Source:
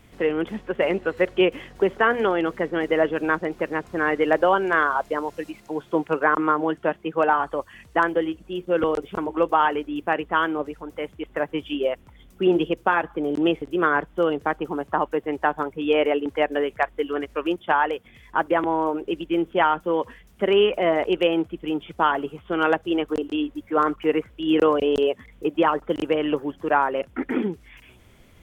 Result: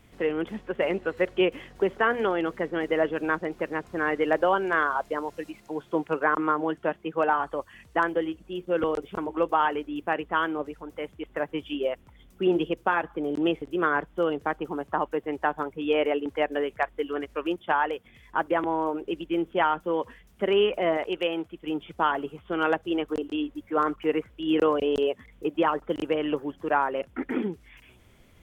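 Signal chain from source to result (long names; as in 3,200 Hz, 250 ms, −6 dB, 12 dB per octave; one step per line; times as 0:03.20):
0:20.97–0:21.67: low-shelf EQ 500 Hz −6.5 dB
level −4 dB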